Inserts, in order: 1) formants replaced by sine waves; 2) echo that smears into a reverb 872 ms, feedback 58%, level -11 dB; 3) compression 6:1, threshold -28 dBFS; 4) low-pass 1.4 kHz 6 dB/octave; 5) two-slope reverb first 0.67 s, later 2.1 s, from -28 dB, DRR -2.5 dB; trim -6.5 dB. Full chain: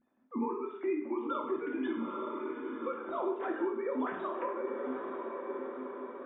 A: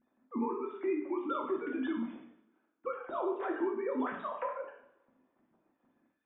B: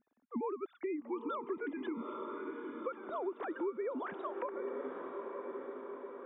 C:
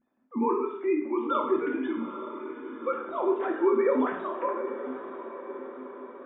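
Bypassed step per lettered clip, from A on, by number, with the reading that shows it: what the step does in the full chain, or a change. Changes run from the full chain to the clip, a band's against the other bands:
2, momentary loudness spread change +3 LU; 5, loudness change -4.5 LU; 3, mean gain reduction 3.5 dB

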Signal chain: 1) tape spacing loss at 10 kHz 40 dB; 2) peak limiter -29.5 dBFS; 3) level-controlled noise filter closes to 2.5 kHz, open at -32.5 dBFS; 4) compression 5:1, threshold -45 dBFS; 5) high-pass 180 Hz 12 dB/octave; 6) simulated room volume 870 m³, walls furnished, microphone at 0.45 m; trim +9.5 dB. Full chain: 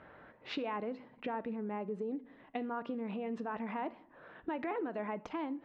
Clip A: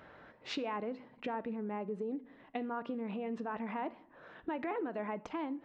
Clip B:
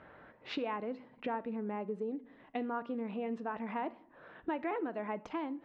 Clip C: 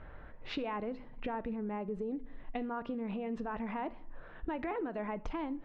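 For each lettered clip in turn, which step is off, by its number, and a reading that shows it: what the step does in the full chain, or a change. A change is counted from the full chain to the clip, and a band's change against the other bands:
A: 3, 4 kHz band +2.0 dB; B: 2, mean gain reduction 2.5 dB; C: 5, 125 Hz band +3.0 dB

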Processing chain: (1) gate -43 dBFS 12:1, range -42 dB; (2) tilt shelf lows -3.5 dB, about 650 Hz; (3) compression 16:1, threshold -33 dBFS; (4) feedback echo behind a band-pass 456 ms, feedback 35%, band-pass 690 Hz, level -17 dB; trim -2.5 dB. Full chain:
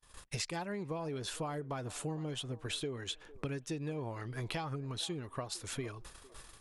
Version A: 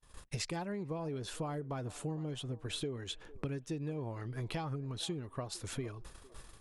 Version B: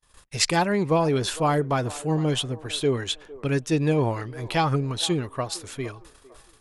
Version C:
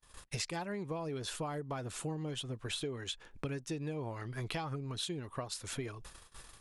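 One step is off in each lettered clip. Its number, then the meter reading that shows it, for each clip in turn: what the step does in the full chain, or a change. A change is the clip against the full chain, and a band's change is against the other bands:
2, momentary loudness spread change +1 LU; 3, mean gain reduction 11.5 dB; 4, echo-to-direct -20.0 dB to none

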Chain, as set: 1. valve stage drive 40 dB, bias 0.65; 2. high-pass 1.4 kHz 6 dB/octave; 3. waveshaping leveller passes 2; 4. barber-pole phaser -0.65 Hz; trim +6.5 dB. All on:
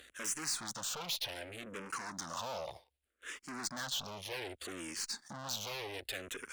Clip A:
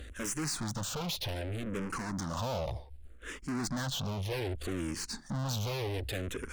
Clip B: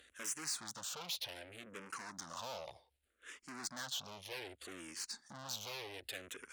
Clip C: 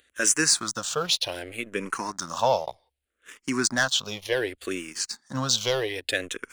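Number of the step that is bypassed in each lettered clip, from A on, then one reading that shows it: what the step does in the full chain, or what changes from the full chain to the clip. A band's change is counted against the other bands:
2, 125 Hz band +16.0 dB; 3, loudness change -4.5 LU; 1, crest factor change +3.5 dB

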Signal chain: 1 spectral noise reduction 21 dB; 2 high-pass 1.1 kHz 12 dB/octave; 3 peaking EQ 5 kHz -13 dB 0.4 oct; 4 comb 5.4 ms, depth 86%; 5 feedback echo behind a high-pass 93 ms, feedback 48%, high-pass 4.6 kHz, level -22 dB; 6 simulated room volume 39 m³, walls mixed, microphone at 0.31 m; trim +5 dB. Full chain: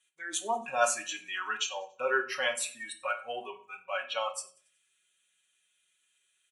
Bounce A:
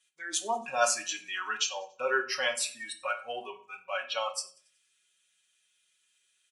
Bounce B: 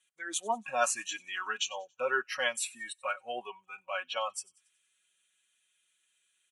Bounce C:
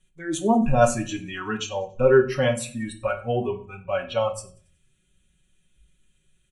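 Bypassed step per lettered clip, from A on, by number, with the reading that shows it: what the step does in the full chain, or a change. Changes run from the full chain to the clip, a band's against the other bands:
3, 4 kHz band +2.5 dB; 6, echo-to-direct -4.5 dB to -36.5 dB; 2, 250 Hz band +23.0 dB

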